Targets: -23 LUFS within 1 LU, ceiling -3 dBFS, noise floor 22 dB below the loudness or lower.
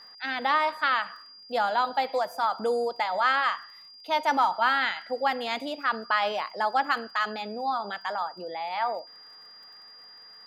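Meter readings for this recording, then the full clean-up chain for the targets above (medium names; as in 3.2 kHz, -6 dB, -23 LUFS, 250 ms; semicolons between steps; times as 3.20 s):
tick rate 32 per s; steady tone 4.8 kHz; tone level -47 dBFS; loudness -27.5 LUFS; peak level -11.5 dBFS; loudness target -23.0 LUFS
-> de-click; band-stop 4.8 kHz, Q 30; trim +4.5 dB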